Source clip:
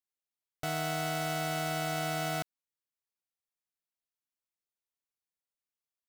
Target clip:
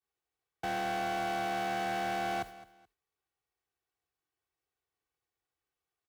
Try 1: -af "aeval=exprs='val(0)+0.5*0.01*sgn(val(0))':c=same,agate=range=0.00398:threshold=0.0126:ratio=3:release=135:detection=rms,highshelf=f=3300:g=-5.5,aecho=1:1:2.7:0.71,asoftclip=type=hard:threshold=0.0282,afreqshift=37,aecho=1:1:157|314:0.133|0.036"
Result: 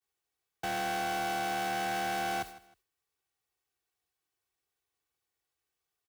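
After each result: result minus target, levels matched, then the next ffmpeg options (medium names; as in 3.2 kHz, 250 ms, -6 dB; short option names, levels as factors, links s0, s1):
8 kHz band +5.5 dB; echo 57 ms early
-af "aeval=exprs='val(0)+0.5*0.01*sgn(val(0))':c=same,agate=range=0.00398:threshold=0.0126:ratio=3:release=135:detection=rms,highshelf=f=3300:g=-15,aecho=1:1:2.7:0.71,asoftclip=type=hard:threshold=0.0282,afreqshift=37,aecho=1:1:157|314:0.133|0.036"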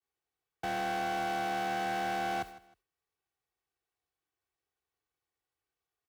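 echo 57 ms early
-af "aeval=exprs='val(0)+0.5*0.01*sgn(val(0))':c=same,agate=range=0.00398:threshold=0.0126:ratio=3:release=135:detection=rms,highshelf=f=3300:g=-15,aecho=1:1:2.7:0.71,asoftclip=type=hard:threshold=0.0282,afreqshift=37,aecho=1:1:214|428:0.133|0.036"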